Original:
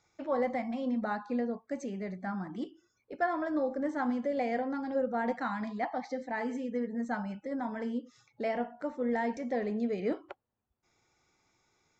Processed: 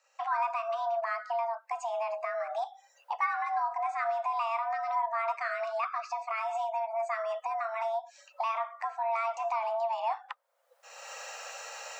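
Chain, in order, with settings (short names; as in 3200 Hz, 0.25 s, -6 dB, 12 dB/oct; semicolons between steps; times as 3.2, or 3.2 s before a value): recorder AGC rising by 33 dB/s; frequency shift +450 Hz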